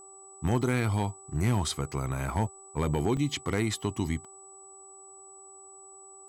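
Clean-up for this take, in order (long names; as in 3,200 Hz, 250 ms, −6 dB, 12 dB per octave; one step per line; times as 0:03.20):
clipped peaks rebuilt −17.5 dBFS
hum removal 389.3 Hz, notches 3
notch filter 7,900 Hz, Q 30
repair the gap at 0:03.17, 2.7 ms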